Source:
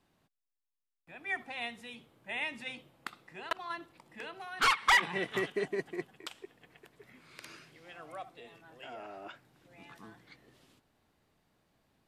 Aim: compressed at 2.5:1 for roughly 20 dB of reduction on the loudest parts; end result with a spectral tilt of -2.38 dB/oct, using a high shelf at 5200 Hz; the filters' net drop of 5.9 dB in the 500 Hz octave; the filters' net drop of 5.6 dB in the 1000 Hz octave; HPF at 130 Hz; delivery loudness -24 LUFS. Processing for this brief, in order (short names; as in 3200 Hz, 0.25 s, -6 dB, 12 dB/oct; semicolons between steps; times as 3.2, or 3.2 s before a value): HPF 130 Hz; bell 500 Hz -7.5 dB; bell 1000 Hz -5.5 dB; high shelf 5200 Hz +4 dB; compressor 2.5:1, threshold -54 dBFS; gain +28.5 dB